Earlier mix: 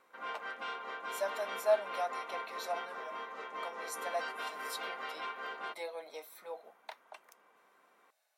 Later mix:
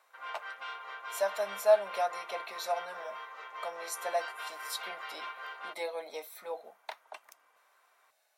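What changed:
speech +5.0 dB; background: add BPF 780–7800 Hz

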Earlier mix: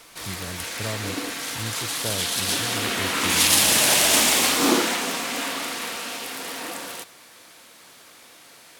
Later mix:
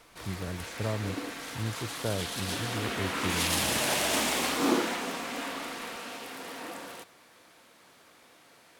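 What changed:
background -5.0 dB; master: add high shelf 2700 Hz -9 dB

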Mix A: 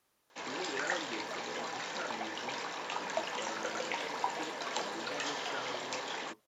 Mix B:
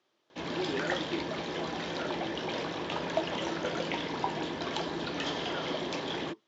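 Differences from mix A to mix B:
first sound: remove HPF 460 Hz 12 dB/oct; second sound: entry -1.45 s; master: add speaker cabinet 130–5800 Hz, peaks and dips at 350 Hz +10 dB, 620 Hz +5 dB, 3300 Hz +6 dB

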